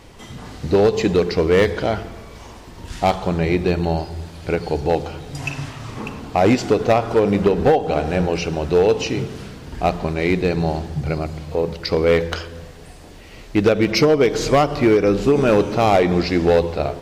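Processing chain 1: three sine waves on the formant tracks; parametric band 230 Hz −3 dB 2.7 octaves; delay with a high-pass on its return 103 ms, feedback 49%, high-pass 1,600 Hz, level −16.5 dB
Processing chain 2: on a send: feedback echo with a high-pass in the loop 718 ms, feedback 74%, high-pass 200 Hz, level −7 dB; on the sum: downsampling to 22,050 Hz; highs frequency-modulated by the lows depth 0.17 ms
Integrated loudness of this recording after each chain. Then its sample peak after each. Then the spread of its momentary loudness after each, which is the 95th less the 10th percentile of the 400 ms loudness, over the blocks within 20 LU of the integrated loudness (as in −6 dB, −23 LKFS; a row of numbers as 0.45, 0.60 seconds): −20.5, −18.5 LKFS; −4.5, −2.5 dBFS; 15, 11 LU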